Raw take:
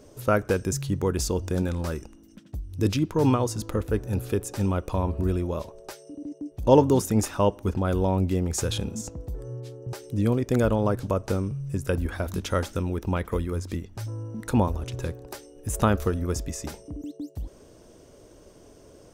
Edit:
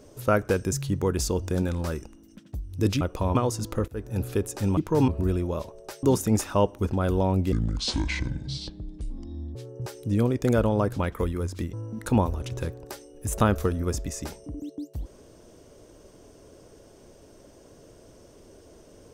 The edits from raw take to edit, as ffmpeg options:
ffmpeg -i in.wav -filter_complex "[0:a]asplit=11[link_01][link_02][link_03][link_04][link_05][link_06][link_07][link_08][link_09][link_10][link_11];[link_01]atrim=end=3.012[link_12];[link_02]atrim=start=4.738:end=5.082[link_13];[link_03]atrim=start=3.318:end=3.85,asetpts=PTS-STARTPTS,afade=type=out:start_time=0.528:duration=0.004:curve=hsin:silence=0.133352[link_14];[link_04]atrim=start=3.85:end=4.742,asetpts=PTS-STARTPTS,afade=type=in:duration=0.34:silence=0.133352[link_15];[link_05]atrim=start=3.008:end=3.322[link_16];[link_06]atrim=start=5.078:end=6.032[link_17];[link_07]atrim=start=6.868:end=8.364[link_18];[link_08]atrim=start=8.36:end=9.62,asetpts=PTS-STARTPTS,asetrate=27342,aresample=44100[link_19];[link_09]atrim=start=9.616:end=11.062[link_20];[link_10]atrim=start=13.118:end=13.862[link_21];[link_11]atrim=start=14.148[link_22];[link_12][link_13]acrossfade=duration=0.004:curve1=hsin:curve2=hsin[link_23];[link_14][link_15]concat=n=2:v=0:a=1[link_24];[link_23][link_24]acrossfade=duration=0.004:curve1=hsin:curve2=hsin[link_25];[link_25][link_16]acrossfade=duration=0.004:curve1=hsin:curve2=hsin[link_26];[link_26][link_17]acrossfade=duration=0.004:curve1=hsin:curve2=hsin[link_27];[link_27][link_18]acrossfade=duration=0.004:curve1=hsin:curve2=hsin[link_28];[link_28][link_19]acrossfade=duration=0.004:curve1=hsin:curve2=hsin[link_29];[link_29][link_20]acrossfade=duration=0.004:curve1=hsin:curve2=hsin[link_30];[link_30][link_21]acrossfade=duration=0.004:curve1=hsin:curve2=hsin[link_31];[link_31][link_22]acrossfade=duration=0.004:curve1=hsin:curve2=hsin" out.wav

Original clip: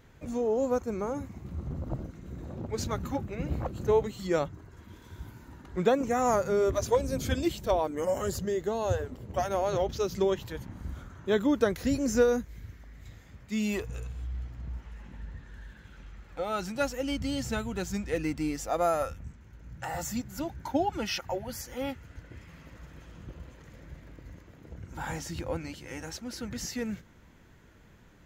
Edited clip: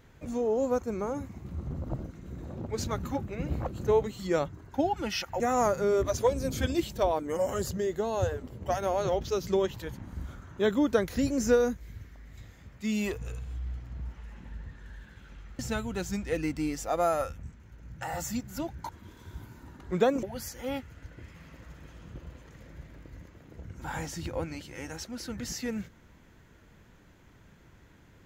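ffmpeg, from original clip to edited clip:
ffmpeg -i in.wav -filter_complex "[0:a]asplit=6[link_01][link_02][link_03][link_04][link_05][link_06];[link_01]atrim=end=4.742[link_07];[link_02]atrim=start=20.698:end=21.362[link_08];[link_03]atrim=start=6.078:end=16.272[link_09];[link_04]atrim=start=17.398:end=20.702[link_10];[link_05]atrim=start=4.738:end=6.082[link_11];[link_06]atrim=start=21.358[link_12];[link_07][link_08]acrossfade=duration=0.004:curve1=hsin:curve2=hsin[link_13];[link_13][link_09]acrossfade=duration=0.004:curve1=hsin:curve2=hsin[link_14];[link_14][link_10]acrossfade=duration=0.004:curve1=hsin:curve2=hsin[link_15];[link_15][link_11]acrossfade=duration=0.004:curve1=hsin:curve2=hsin[link_16];[link_16][link_12]acrossfade=duration=0.004:curve1=hsin:curve2=hsin" out.wav

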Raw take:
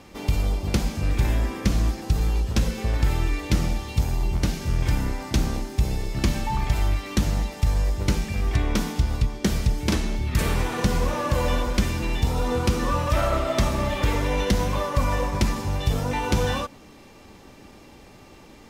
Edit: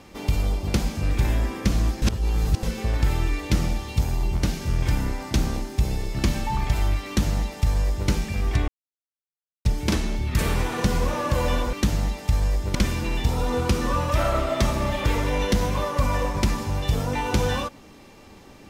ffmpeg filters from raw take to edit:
ffmpeg -i in.wav -filter_complex "[0:a]asplit=7[link_01][link_02][link_03][link_04][link_05][link_06][link_07];[link_01]atrim=end=2.022[link_08];[link_02]atrim=start=2.018:end=2.632,asetpts=PTS-STARTPTS,areverse[link_09];[link_03]atrim=start=2.628:end=8.68,asetpts=PTS-STARTPTS,afade=type=out:start_time=6.048:duration=0.004:curve=hsin[link_10];[link_04]atrim=start=8.68:end=9.65,asetpts=PTS-STARTPTS,volume=0[link_11];[link_05]atrim=start=9.65:end=11.732,asetpts=PTS-STARTPTS,afade=type=in:duration=0.004:curve=hsin[link_12];[link_06]atrim=start=7.068:end=8.092[link_13];[link_07]atrim=start=11.728[link_14];[link_08][link_09]acrossfade=duration=0.004:curve1=hsin:curve2=hsin[link_15];[link_10][link_11][link_12]concat=n=3:v=0:a=1[link_16];[link_15][link_16]acrossfade=duration=0.004:curve1=hsin:curve2=hsin[link_17];[link_17][link_13]acrossfade=duration=0.004:curve1=hsin:curve2=hsin[link_18];[link_18][link_14]acrossfade=duration=0.004:curve1=hsin:curve2=hsin" out.wav

